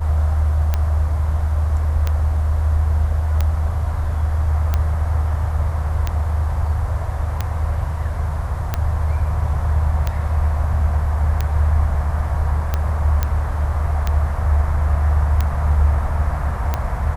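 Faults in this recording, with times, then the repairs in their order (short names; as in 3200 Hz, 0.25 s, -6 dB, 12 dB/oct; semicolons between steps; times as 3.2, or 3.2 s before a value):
tick 45 rpm -7 dBFS
13.23 pop -6 dBFS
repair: de-click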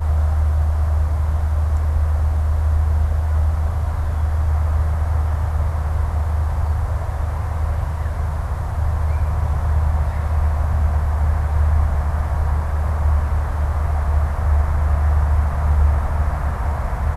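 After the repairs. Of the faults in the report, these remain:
none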